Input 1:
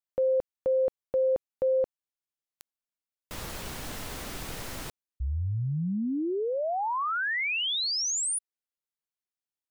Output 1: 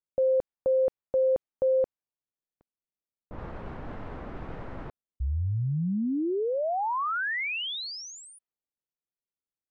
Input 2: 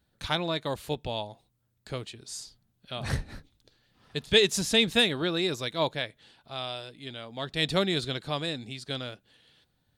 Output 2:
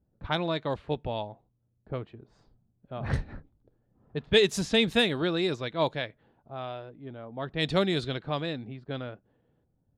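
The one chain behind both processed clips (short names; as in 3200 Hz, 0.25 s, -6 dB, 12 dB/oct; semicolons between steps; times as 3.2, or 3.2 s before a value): low-pass opened by the level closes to 570 Hz, open at -22.5 dBFS; high shelf 3100 Hz -8.5 dB; gain +1.5 dB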